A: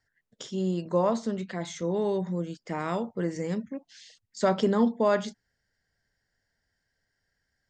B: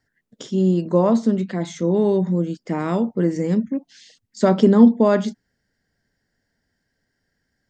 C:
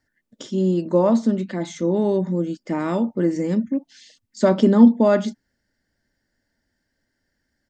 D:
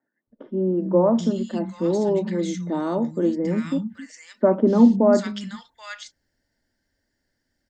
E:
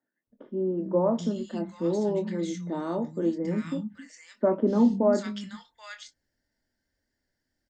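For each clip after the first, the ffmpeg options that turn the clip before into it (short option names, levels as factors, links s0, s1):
-af "equalizer=f=250:t=o:w=1.6:g=10.5,volume=1.41"
-af "aecho=1:1:3.4:0.36,volume=0.891"
-filter_complex "[0:a]acrossover=split=180|1500[s0][s1][s2];[s0]adelay=270[s3];[s2]adelay=780[s4];[s3][s1][s4]amix=inputs=3:normalize=0"
-filter_complex "[0:a]asplit=2[s0][s1];[s1]adelay=24,volume=0.355[s2];[s0][s2]amix=inputs=2:normalize=0,volume=0.501"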